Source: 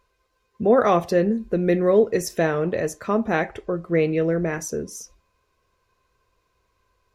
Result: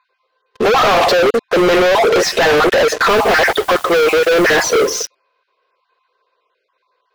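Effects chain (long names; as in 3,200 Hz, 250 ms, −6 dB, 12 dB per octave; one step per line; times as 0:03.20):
time-frequency cells dropped at random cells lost 22%
Chebyshev band-pass filter 450–4,200 Hz, order 3
brickwall limiter −20 dBFS, peak gain reduction 11 dB
leveller curve on the samples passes 5
sine wavefolder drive 8 dB, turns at −14.5 dBFS
0:03.08–0:04.90: background noise white −42 dBFS
slew-rate limiting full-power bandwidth 530 Hz
level +4.5 dB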